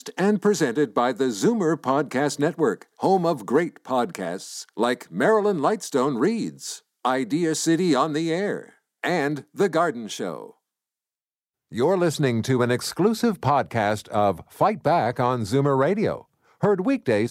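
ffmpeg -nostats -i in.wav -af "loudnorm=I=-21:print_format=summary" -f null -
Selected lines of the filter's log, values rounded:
Input Integrated:    -23.0 LUFS
Input True Peak:      -6.6 dBTP
Input LRA:             3.5 LU
Input Threshold:     -33.3 LUFS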